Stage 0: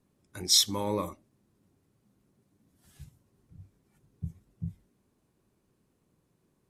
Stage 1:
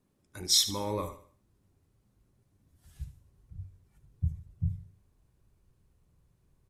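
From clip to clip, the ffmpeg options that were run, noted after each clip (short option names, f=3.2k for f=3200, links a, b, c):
-filter_complex "[0:a]asplit=2[a][b];[b]aecho=0:1:75|150|225|300:0.237|0.0877|0.0325|0.012[c];[a][c]amix=inputs=2:normalize=0,asubboost=boost=10.5:cutoff=79,volume=-2dB"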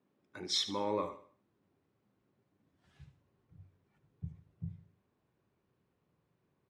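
-af "highpass=210,lowpass=3k"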